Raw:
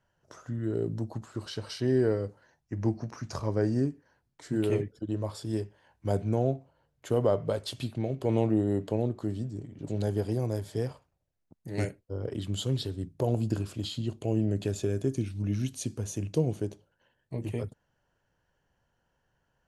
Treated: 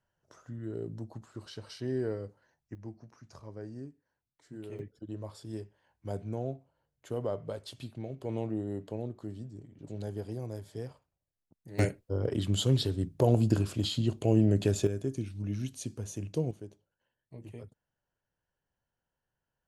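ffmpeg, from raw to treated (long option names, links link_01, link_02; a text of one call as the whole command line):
ffmpeg -i in.wav -af "asetnsamples=nb_out_samples=441:pad=0,asendcmd='2.75 volume volume -16dB;4.79 volume volume -8.5dB;11.79 volume volume 3.5dB;14.87 volume volume -4.5dB;16.51 volume volume -12.5dB',volume=-7.5dB" out.wav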